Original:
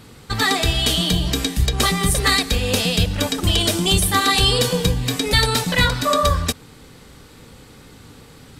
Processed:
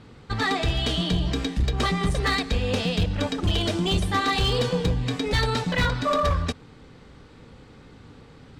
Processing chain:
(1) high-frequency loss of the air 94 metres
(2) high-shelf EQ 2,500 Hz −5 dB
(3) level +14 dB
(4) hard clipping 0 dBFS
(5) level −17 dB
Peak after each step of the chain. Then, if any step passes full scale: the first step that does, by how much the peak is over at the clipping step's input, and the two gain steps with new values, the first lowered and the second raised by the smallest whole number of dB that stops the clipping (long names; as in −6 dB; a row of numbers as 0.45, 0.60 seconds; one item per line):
−5.5, −6.0, +8.0, 0.0, −17.0 dBFS
step 3, 8.0 dB
step 3 +6 dB, step 5 −9 dB